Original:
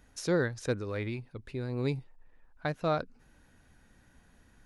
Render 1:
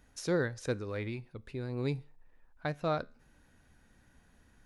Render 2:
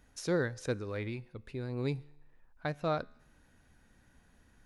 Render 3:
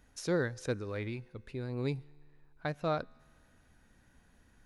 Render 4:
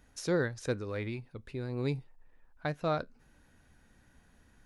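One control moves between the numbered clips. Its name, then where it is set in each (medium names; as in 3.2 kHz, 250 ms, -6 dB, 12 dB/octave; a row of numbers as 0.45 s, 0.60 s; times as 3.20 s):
feedback comb, decay: 0.4 s, 0.86 s, 2.1 s, 0.17 s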